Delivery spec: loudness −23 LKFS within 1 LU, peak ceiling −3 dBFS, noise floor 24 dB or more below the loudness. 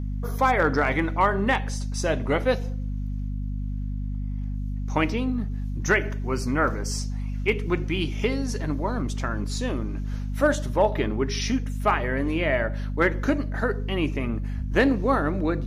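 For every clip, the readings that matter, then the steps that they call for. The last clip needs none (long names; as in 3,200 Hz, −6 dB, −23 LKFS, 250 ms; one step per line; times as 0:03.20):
mains hum 50 Hz; hum harmonics up to 250 Hz; level of the hum −26 dBFS; integrated loudness −26.0 LKFS; sample peak −8.5 dBFS; target loudness −23.0 LKFS
→ mains-hum notches 50/100/150/200/250 Hz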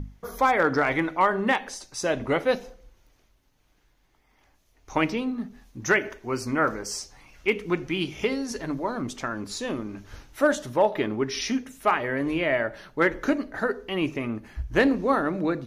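mains hum none found; integrated loudness −26.0 LKFS; sample peak −9.5 dBFS; target loudness −23.0 LKFS
→ level +3 dB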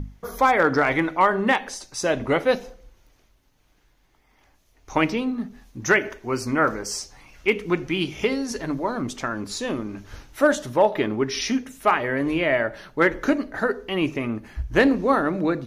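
integrated loudness −23.0 LKFS; sample peak −6.5 dBFS; background noise floor −62 dBFS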